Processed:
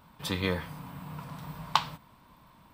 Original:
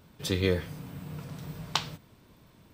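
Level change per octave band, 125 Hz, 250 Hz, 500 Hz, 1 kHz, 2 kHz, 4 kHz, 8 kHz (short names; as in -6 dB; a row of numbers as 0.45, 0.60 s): -3.5, -2.5, -5.5, +8.0, +1.0, -1.0, -4.5 dB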